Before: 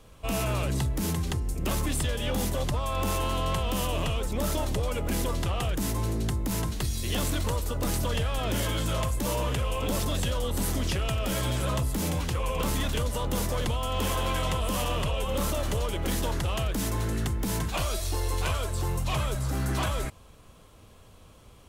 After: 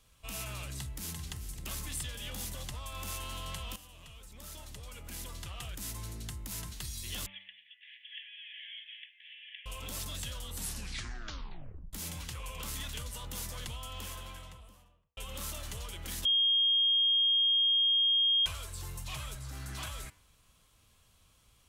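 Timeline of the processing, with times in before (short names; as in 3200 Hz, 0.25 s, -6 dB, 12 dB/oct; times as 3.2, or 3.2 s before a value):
0.76–1.16 echo throw 0.39 s, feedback 85%, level -11 dB
3.76–5.94 fade in, from -16.5 dB
7.26–9.66 Chebyshev band-pass 1700–3400 Hz, order 5
10.55 tape stop 1.38 s
13.67–15.17 studio fade out
16.25–18.46 bleep 3240 Hz -17 dBFS
19.34–19.77 high shelf 5500 Hz -> 11000 Hz -7 dB
whole clip: passive tone stack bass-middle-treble 5-5-5; de-hum 97.31 Hz, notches 32; gain +1 dB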